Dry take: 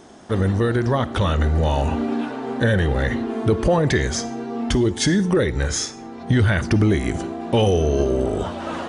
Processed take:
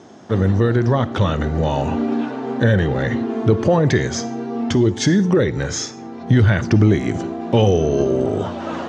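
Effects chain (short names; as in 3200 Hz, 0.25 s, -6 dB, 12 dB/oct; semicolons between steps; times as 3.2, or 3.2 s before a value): elliptic band-pass 100–6700 Hz, stop band 40 dB; low shelf 480 Hz +5 dB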